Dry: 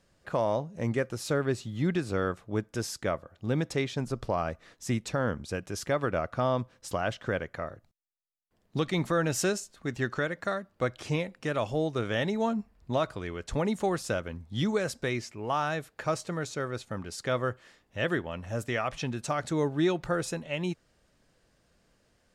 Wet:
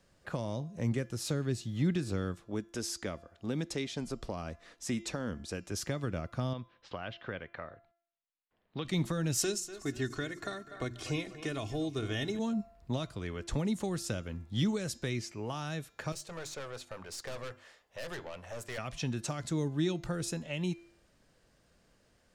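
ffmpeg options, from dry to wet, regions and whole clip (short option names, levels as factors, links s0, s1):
-filter_complex "[0:a]asettb=1/sr,asplit=3[s0][s1][s2];[s0]atrim=end=2.404[s3];[s1]atrim=start=2.4:end=5.71,asetpts=PTS-STARTPTS,afade=t=in:d=0.004:c=qsin,afade=t=out:st=3.306:d=0.004:c=qsin,lowpass=f=12000:w=0.5412,lowpass=f=12000:w=1.3066,equalizer=f=120:t=o:w=0.79:g=-11[s4];[s2]atrim=start=5.706[s5];[s3][s4]acrossfade=d=0.004:c1=hsin:c2=qsin[s6];[s6][s5]acrossfade=d=0.004:c1=qsin:c2=hsin,asettb=1/sr,asplit=3[s7][s8][s9];[s7]atrim=end=6.534[s10];[s8]atrim=start=6.53:end=8.85,asetpts=PTS-STARTPTS,afade=t=in:d=0.004:c=qsin,afade=t=out:st=2.316:d=0.004:c=qsin,lowpass=f=3600:w=0.5412,lowpass=f=3600:w=1.3066,lowshelf=f=380:g=-10.5[s11];[s9]atrim=start=8.846[s12];[s10][s11]acrossfade=d=0.004:c1=hsin:c2=qsin[s13];[s13][s12]acrossfade=d=0.004:c1=qsin:c2=hsin,asettb=1/sr,asplit=3[s14][s15][s16];[s14]atrim=end=9.374[s17];[s15]atrim=start=9.37:end=12.39,asetpts=PTS-STARTPTS,afade=t=in:d=0.004:c=qsin,afade=t=out:st=3.016:d=0.004:c=qsin,bandreject=f=60:t=h:w=6,bandreject=f=120:t=h:w=6,bandreject=f=180:t=h:w=6,bandreject=f=240:t=h:w=6,bandreject=f=300:t=h:w=6,bandreject=f=360:t=h:w=6,aecho=1:1:2.8:0.64,atrim=end_sample=133182,aecho=1:1:243|486|729|972:0.126|0.0667|0.0354|0.0187,atrim=end_sample=133182[s18];[s16]atrim=start=12.386[s19];[s17][s18]acrossfade=d=0.004:c1=hsin:c2=qsin[s20];[s20][s19]acrossfade=d=0.004:c1=qsin:c2=hsin,asettb=1/sr,asplit=3[s21][s22][s23];[s21]atrim=end=16.124[s24];[s22]atrim=start=16.12:end=18.78,asetpts=PTS-STARTPTS,afade=t=in:d=0.004:c=qsin,afade=t=out:st=2.656:d=0.004:c=qsin,lowshelf=f=390:t=q:w=1.5:g=-8.5,bandreject=f=50:t=h:w=6,bandreject=f=100:t=h:w=6,bandreject=f=150:t=h:w=6,bandreject=f=200:t=h:w=6,bandreject=f=250:t=h:w=6,bandreject=f=300:t=h:w=6,bandreject=f=350:t=h:w=6,aeval=exprs='(tanh(56.2*val(0)+0.35)-tanh(0.35))/56.2':c=same[s25];[s23]atrim=start=18.776[s26];[s24][s25]acrossfade=d=0.004:c1=hsin:c2=qsin[s27];[s27][s26]acrossfade=d=0.004:c1=qsin:c2=hsin,bandreject=f=341.1:t=h:w=4,bandreject=f=682.2:t=h:w=4,bandreject=f=1023.3:t=h:w=4,bandreject=f=1364.4:t=h:w=4,bandreject=f=1705.5:t=h:w=4,bandreject=f=2046.6:t=h:w=4,bandreject=f=2387.7:t=h:w=4,bandreject=f=2728.8:t=h:w=4,bandreject=f=3069.9:t=h:w=4,bandreject=f=3411:t=h:w=4,bandreject=f=3752.1:t=h:w=4,bandreject=f=4093.2:t=h:w=4,bandreject=f=4434.3:t=h:w=4,bandreject=f=4775.4:t=h:w=4,bandreject=f=5116.5:t=h:w=4,bandreject=f=5457.6:t=h:w=4,bandreject=f=5798.7:t=h:w=4,bandreject=f=6139.8:t=h:w=4,bandreject=f=6480.9:t=h:w=4,bandreject=f=6822:t=h:w=4,bandreject=f=7163.1:t=h:w=4,bandreject=f=7504.2:t=h:w=4,acrossover=split=290|3000[s28][s29][s30];[s29]acompressor=threshold=0.01:ratio=6[s31];[s28][s31][s30]amix=inputs=3:normalize=0"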